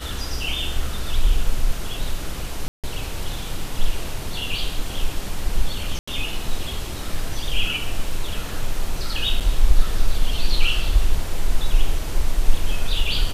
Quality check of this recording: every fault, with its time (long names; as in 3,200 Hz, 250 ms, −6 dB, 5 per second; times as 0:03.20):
0:02.68–0:02.84: drop-out 157 ms
0:05.99–0:06.08: drop-out 85 ms
0:09.40–0:09.41: drop-out 7.3 ms